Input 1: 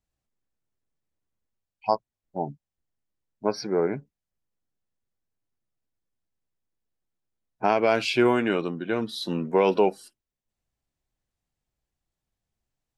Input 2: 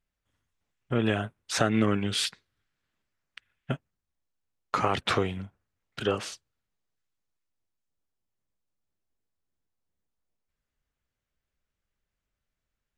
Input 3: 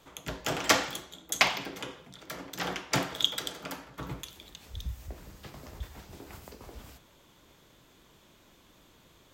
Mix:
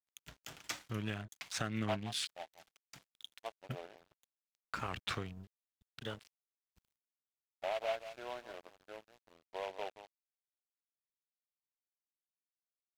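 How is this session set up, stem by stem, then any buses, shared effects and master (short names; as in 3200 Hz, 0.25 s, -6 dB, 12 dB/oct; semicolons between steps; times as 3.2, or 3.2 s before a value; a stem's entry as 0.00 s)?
-2.5 dB, 0.00 s, no send, echo send -10.5 dB, ladder band-pass 680 Hz, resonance 70%; noise-modulated delay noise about 1800 Hz, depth 0.035 ms
-7.5 dB, 0.00 s, no send, no echo send, Wiener smoothing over 41 samples
-8.0 dB, 0.00 s, no send, no echo send, auto duck -14 dB, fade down 1.40 s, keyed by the second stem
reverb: off
echo: echo 0.176 s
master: bell 480 Hz -10 dB 2.3 oct; crossover distortion -54.5 dBFS; record warp 45 rpm, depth 160 cents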